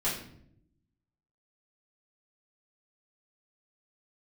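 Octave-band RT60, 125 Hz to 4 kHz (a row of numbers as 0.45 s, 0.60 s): 1.2 s, 1.1 s, 0.80 s, 0.55 s, 0.55 s, 0.45 s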